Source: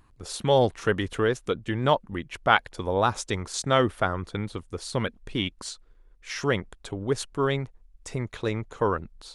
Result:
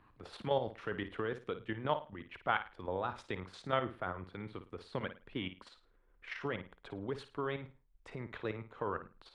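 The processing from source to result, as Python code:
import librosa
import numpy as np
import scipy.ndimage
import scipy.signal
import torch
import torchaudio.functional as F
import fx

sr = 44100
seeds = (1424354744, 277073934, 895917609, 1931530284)

p1 = fx.tilt_eq(x, sr, slope=2.0)
p2 = fx.level_steps(p1, sr, step_db=10)
p3 = fx.air_absorb(p2, sr, metres=460.0)
p4 = p3 + fx.room_flutter(p3, sr, wall_m=9.3, rt60_s=0.29, dry=0)
p5 = fx.band_squash(p4, sr, depth_pct=40)
y = F.gain(torch.from_numpy(p5), -4.5).numpy()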